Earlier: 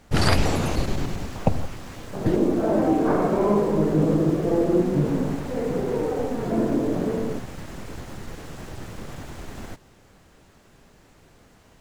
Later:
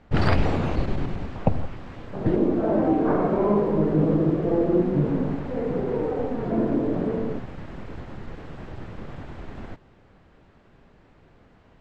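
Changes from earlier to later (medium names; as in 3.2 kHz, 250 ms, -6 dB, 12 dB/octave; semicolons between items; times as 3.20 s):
speech: add peaking EQ 7.8 kHz +9 dB 0.48 oct; master: add distance through air 320 m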